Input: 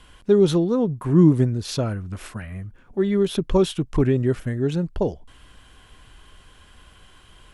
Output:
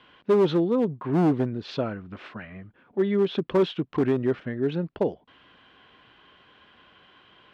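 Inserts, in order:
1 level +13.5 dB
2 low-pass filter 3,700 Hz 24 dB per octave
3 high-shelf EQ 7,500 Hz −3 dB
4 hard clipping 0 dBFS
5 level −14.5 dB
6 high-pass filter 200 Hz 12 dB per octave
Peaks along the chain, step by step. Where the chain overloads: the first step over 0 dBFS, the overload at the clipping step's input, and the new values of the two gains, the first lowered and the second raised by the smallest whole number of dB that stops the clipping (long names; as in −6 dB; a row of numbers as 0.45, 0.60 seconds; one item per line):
+8.5, +8.5, +8.5, 0.0, −14.5, −10.5 dBFS
step 1, 8.5 dB
step 1 +4.5 dB, step 5 −5.5 dB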